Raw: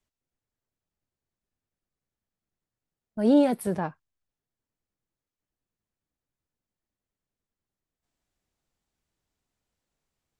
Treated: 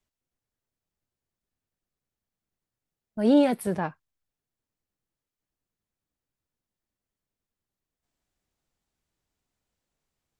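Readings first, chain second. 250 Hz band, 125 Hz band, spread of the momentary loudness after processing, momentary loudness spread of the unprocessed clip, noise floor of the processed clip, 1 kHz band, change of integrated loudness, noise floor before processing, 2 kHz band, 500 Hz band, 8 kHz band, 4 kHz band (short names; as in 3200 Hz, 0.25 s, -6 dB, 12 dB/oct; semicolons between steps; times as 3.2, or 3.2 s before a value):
0.0 dB, 0.0 dB, 14 LU, 15 LU, under -85 dBFS, +1.0 dB, 0.0 dB, under -85 dBFS, +3.5 dB, +0.5 dB, 0.0 dB, +3.5 dB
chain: dynamic EQ 2400 Hz, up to +5 dB, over -42 dBFS, Q 0.87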